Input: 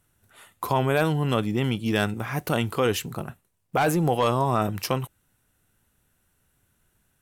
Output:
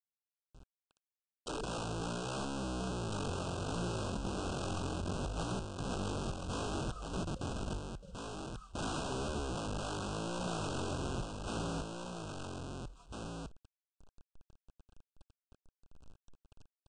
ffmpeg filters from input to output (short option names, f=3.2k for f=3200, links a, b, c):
-af "aemphasis=mode=reproduction:type=riaa,afftdn=nr=15:nf=-30,asubboost=boost=2:cutoff=110,alimiter=limit=-12.5dB:level=0:latency=1:release=12,acompressor=threshold=-28dB:ratio=6,asoftclip=type=tanh:threshold=-24dB,acrusher=bits=8:mix=0:aa=0.000001,aeval=exprs='(mod(35.5*val(0)+1,2)-1)/35.5':c=same,asuperstop=centerf=4700:order=20:qfactor=2.3,aecho=1:1:706:0.562,asetrate=18846,aresample=44100,volume=-3dB"